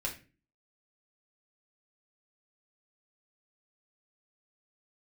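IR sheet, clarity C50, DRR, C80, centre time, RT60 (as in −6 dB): 10.5 dB, −1.5 dB, 15.5 dB, 16 ms, 0.35 s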